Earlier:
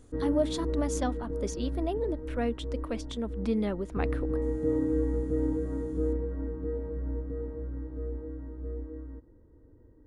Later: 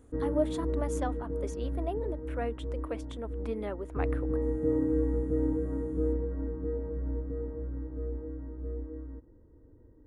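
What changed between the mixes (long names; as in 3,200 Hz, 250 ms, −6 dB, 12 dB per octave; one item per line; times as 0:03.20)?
speech: add high-pass filter 420 Hz 12 dB per octave
master: add parametric band 4,900 Hz −12.5 dB 1.4 octaves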